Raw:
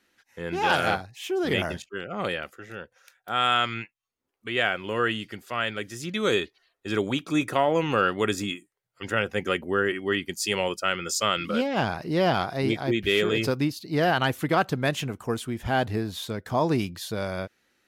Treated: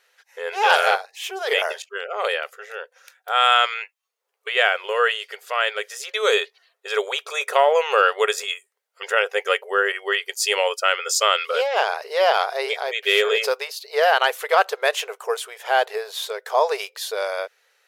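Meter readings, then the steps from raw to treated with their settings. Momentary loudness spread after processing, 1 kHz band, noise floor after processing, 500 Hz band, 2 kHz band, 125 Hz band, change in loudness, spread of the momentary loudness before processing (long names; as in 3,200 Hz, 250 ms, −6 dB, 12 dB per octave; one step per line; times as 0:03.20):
12 LU, +6.5 dB, −74 dBFS, +5.0 dB, +6.5 dB, below −40 dB, +5.0 dB, 11 LU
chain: linear-phase brick-wall high-pass 400 Hz
level +6.5 dB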